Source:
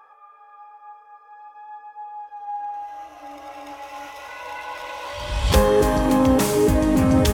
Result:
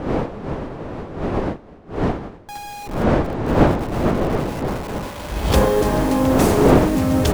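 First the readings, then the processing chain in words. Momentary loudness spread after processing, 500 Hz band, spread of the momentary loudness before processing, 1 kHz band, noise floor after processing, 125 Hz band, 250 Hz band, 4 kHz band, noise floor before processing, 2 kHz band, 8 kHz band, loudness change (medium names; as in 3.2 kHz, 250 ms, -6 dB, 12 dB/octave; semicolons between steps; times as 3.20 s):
16 LU, +3.5 dB, 21 LU, +3.0 dB, -41 dBFS, +5.0 dB, +3.5 dB, 0.0 dB, -50 dBFS, +3.0 dB, -0.5 dB, +1.0 dB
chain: send-on-delta sampling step -26.5 dBFS; wind noise 490 Hz -20 dBFS; trim -1 dB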